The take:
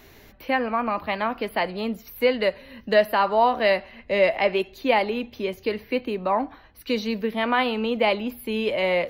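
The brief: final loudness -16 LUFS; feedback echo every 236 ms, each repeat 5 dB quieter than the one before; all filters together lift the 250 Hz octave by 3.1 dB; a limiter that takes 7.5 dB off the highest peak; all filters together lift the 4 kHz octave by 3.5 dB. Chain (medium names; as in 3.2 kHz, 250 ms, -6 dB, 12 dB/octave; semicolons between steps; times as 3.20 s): peaking EQ 250 Hz +3.5 dB; peaking EQ 4 kHz +5 dB; peak limiter -14 dBFS; feedback delay 236 ms, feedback 56%, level -5 dB; trim +7.5 dB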